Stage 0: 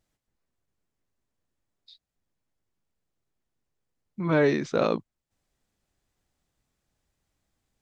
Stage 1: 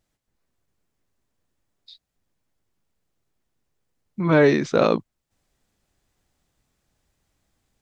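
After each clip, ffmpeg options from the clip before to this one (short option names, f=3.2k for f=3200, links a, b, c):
-af "dynaudnorm=f=200:g=3:m=4dB,volume=2dB"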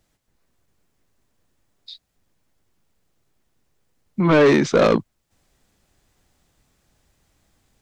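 -filter_complex "[0:a]acrossover=split=160[a][b];[a]alimiter=level_in=9dB:limit=-24dB:level=0:latency=1,volume=-9dB[c];[b]asoftclip=type=tanh:threshold=-17.5dB[d];[c][d]amix=inputs=2:normalize=0,volume=7.5dB"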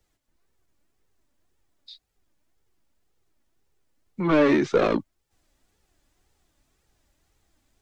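-filter_complex "[0:a]flanger=delay=2.1:depth=1.5:regen=32:speed=1.9:shape=triangular,acrossover=split=240|430|3400[a][b][c][d];[d]alimiter=level_in=12.5dB:limit=-24dB:level=0:latency=1:release=27,volume=-12.5dB[e];[a][b][c][e]amix=inputs=4:normalize=0,volume=-1dB"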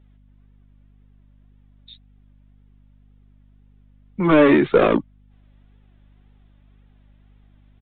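-af "aeval=exprs='val(0)+0.00141*(sin(2*PI*50*n/s)+sin(2*PI*2*50*n/s)/2+sin(2*PI*3*50*n/s)/3+sin(2*PI*4*50*n/s)/4+sin(2*PI*5*50*n/s)/5)':c=same,aresample=8000,aresample=44100,volume=5.5dB"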